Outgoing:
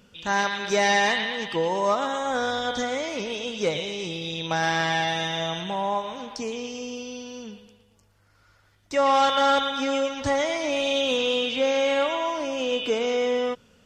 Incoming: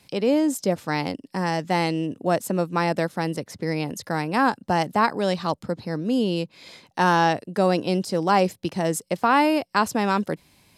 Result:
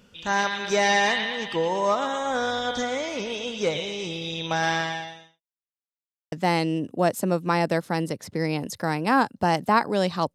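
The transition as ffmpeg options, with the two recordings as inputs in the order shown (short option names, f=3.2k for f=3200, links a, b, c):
-filter_complex "[0:a]apad=whole_dur=10.34,atrim=end=10.34,asplit=2[a][b];[a]atrim=end=5.41,asetpts=PTS-STARTPTS,afade=t=out:st=4.73:d=0.68:c=qua[c];[b]atrim=start=5.41:end=6.32,asetpts=PTS-STARTPTS,volume=0[d];[1:a]atrim=start=1.59:end=5.61,asetpts=PTS-STARTPTS,afade=t=in:d=0.004:c=hsin[e];[c][d][e]concat=n=3:v=0:a=1"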